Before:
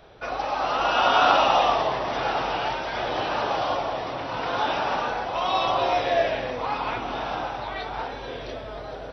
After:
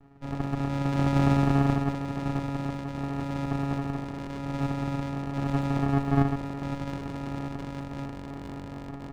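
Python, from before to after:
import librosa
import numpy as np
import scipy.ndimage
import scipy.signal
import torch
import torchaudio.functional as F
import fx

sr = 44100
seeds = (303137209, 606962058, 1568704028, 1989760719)

y = fx.rattle_buzz(x, sr, strikes_db=-40.0, level_db=-14.0)
y = fx.vocoder(y, sr, bands=4, carrier='saw', carrier_hz=139.0)
y = fx.running_max(y, sr, window=65)
y = y * 10.0 ** (-3.5 / 20.0)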